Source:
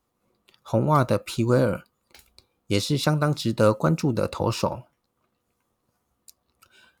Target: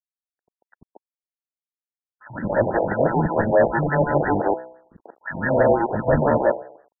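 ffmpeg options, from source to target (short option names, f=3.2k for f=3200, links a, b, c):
-filter_complex "[0:a]areverse,agate=range=-29dB:threshold=-50dB:ratio=16:detection=peak,lowshelf=f=80:g=-9.5,bandreject=f=63.61:t=h:w=4,bandreject=f=127.22:t=h:w=4,bandreject=f=190.83:t=h:w=4,bandreject=f=254.44:t=h:w=4,bandreject=f=318.05:t=h:w=4,bandreject=f=381.66:t=h:w=4,bandreject=f=445.27:t=h:w=4,bandreject=f=508.88:t=h:w=4,bandreject=f=572.49:t=h:w=4,bandreject=f=636.1:t=h:w=4,bandreject=f=699.71:t=h:w=4,bandreject=f=763.32:t=h:w=4,bandreject=f=826.93:t=h:w=4,bandreject=f=890.54:t=h:w=4,asplit=2[a][b];[b]acompressor=threshold=-32dB:ratio=6,volume=-2.5dB[c];[a][c]amix=inputs=2:normalize=0,acrusher=samples=38:mix=1:aa=0.000001,acrossover=split=280|1400[d][e][f];[d]adelay=90[g];[e]adelay=230[h];[g][h][f]amix=inputs=3:normalize=0,acrusher=bits=10:mix=0:aa=0.000001,asplit=2[i][j];[j]highpass=f=720:p=1,volume=19dB,asoftclip=type=tanh:threshold=-6dB[k];[i][k]amix=inputs=2:normalize=0,lowpass=f=5.3k:p=1,volume=-6dB,afftfilt=real='re*lt(b*sr/1024,930*pow(2000/930,0.5+0.5*sin(2*PI*5.9*pts/sr)))':imag='im*lt(b*sr/1024,930*pow(2000/930,0.5+0.5*sin(2*PI*5.9*pts/sr)))':win_size=1024:overlap=0.75"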